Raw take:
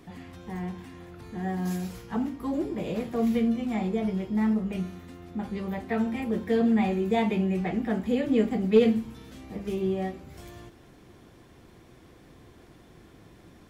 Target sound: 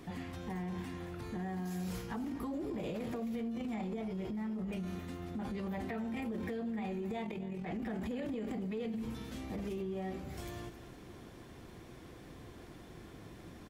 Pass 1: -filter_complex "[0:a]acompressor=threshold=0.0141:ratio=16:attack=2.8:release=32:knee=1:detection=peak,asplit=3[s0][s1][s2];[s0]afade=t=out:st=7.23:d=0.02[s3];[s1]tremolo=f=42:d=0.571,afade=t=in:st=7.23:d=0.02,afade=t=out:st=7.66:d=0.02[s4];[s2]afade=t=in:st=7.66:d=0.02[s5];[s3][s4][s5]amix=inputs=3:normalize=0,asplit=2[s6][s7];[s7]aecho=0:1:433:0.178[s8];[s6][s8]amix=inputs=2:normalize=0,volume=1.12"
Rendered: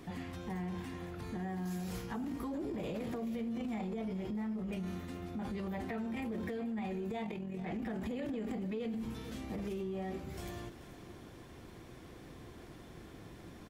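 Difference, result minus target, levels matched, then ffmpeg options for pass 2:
echo 170 ms late
-filter_complex "[0:a]acompressor=threshold=0.0141:ratio=16:attack=2.8:release=32:knee=1:detection=peak,asplit=3[s0][s1][s2];[s0]afade=t=out:st=7.23:d=0.02[s3];[s1]tremolo=f=42:d=0.571,afade=t=in:st=7.23:d=0.02,afade=t=out:st=7.66:d=0.02[s4];[s2]afade=t=in:st=7.66:d=0.02[s5];[s3][s4][s5]amix=inputs=3:normalize=0,asplit=2[s6][s7];[s7]aecho=0:1:263:0.178[s8];[s6][s8]amix=inputs=2:normalize=0,volume=1.12"

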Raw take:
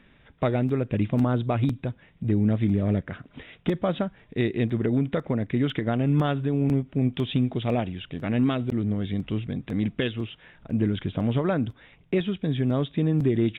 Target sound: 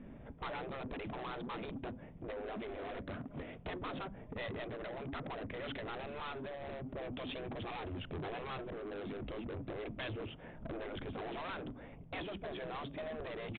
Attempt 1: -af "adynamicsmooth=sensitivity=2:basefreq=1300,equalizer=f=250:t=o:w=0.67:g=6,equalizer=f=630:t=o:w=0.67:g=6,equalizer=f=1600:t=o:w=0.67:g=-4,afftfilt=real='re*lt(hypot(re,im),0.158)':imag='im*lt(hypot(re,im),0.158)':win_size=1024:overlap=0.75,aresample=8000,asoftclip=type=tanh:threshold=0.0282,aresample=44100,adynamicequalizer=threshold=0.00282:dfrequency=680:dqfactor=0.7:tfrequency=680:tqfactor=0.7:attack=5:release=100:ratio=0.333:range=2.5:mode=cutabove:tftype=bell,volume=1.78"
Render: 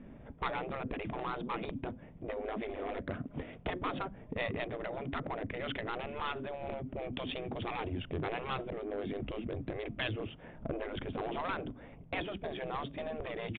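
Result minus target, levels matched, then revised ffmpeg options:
saturation: distortion -9 dB
-af "adynamicsmooth=sensitivity=2:basefreq=1300,equalizer=f=250:t=o:w=0.67:g=6,equalizer=f=630:t=o:w=0.67:g=6,equalizer=f=1600:t=o:w=0.67:g=-4,afftfilt=real='re*lt(hypot(re,im),0.158)':imag='im*lt(hypot(re,im),0.158)':win_size=1024:overlap=0.75,aresample=8000,asoftclip=type=tanh:threshold=0.00708,aresample=44100,adynamicequalizer=threshold=0.00282:dfrequency=680:dqfactor=0.7:tfrequency=680:tqfactor=0.7:attack=5:release=100:ratio=0.333:range=2.5:mode=cutabove:tftype=bell,volume=1.78"

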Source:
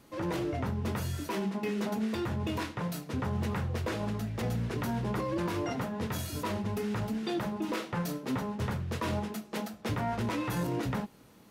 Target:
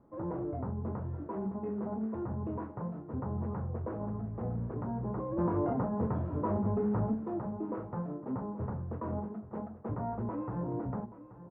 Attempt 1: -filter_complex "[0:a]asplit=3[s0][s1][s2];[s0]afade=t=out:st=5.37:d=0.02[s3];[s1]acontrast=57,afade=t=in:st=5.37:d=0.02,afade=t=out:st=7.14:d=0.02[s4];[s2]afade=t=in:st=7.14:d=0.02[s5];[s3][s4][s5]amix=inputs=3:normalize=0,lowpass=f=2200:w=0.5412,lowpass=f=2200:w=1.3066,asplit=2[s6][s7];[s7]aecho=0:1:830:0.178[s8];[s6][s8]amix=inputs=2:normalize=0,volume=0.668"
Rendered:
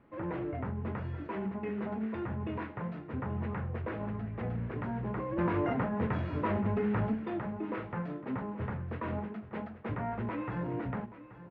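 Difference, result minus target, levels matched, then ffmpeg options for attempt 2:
2 kHz band +13.5 dB
-filter_complex "[0:a]asplit=3[s0][s1][s2];[s0]afade=t=out:st=5.37:d=0.02[s3];[s1]acontrast=57,afade=t=in:st=5.37:d=0.02,afade=t=out:st=7.14:d=0.02[s4];[s2]afade=t=in:st=7.14:d=0.02[s5];[s3][s4][s5]amix=inputs=3:normalize=0,lowpass=f=1100:w=0.5412,lowpass=f=1100:w=1.3066,asplit=2[s6][s7];[s7]aecho=0:1:830:0.178[s8];[s6][s8]amix=inputs=2:normalize=0,volume=0.668"

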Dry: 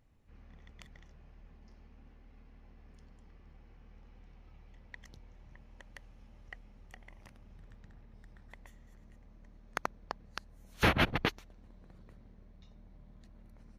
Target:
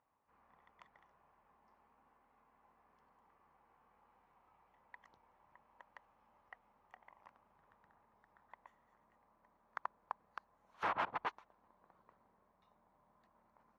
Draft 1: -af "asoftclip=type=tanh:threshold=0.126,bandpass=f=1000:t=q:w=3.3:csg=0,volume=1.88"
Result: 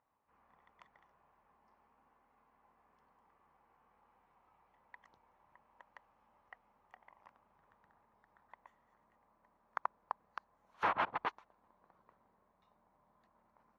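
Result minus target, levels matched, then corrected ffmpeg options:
saturation: distortion -9 dB
-af "asoftclip=type=tanh:threshold=0.0501,bandpass=f=1000:t=q:w=3.3:csg=0,volume=1.88"

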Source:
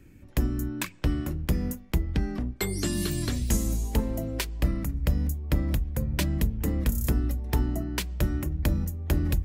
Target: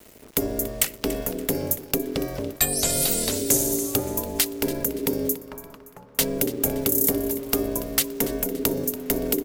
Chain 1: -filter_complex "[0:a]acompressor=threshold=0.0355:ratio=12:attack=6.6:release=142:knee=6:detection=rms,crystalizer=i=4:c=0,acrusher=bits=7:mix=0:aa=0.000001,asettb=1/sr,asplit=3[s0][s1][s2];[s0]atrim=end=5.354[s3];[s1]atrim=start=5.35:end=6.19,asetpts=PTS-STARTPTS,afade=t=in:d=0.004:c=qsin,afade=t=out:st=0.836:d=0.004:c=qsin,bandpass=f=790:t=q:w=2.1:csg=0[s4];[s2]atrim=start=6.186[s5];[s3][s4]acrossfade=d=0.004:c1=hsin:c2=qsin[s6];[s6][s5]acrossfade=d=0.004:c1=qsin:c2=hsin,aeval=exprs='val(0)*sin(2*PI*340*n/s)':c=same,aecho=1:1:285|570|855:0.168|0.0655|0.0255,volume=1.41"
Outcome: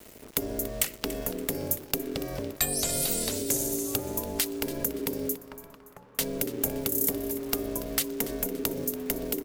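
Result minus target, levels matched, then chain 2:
compression: peak gain reduction +8.5 dB
-filter_complex "[0:a]acompressor=threshold=0.112:ratio=12:attack=6.6:release=142:knee=6:detection=rms,crystalizer=i=4:c=0,acrusher=bits=7:mix=0:aa=0.000001,asettb=1/sr,asplit=3[s0][s1][s2];[s0]atrim=end=5.354[s3];[s1]atrim=start=5.35:end=6.19,asetpts=PTS-STARTPTS,afade=t=in:d=0.004:c=qsin,afade=t=out:st=0.836:d=0.004:c=qsin,bandpass=f=790:t=q:w=2.1:csg=0[s4];[s2]atrim=start=6.186[s5];[s3][s4]acrossfade=d=0.004:c1=hsin:c2=qsin[s6];[s6][s5]acrossfade=d=0.004:c1=qsin:c2=hsin,aeval=exprs='val(0)*sin(2*PI*340*n/s)':c=same,aecho=1:1:285|570|855:0.168|0.0655|0.0255,volume=1.41"

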